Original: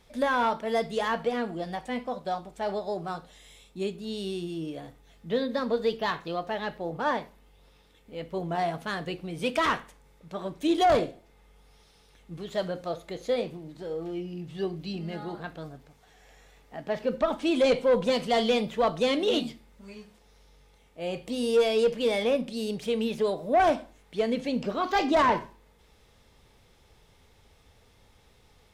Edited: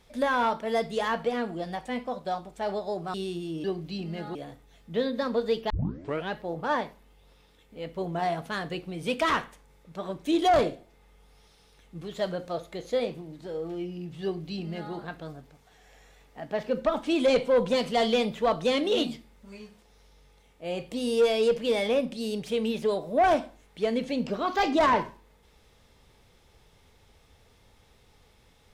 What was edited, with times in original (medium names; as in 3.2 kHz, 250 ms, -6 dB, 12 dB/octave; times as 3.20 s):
3.14–4.21 s: delete
6.06 s: tape start 0.63 s
14.59–15.30 s: copy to 4.71 s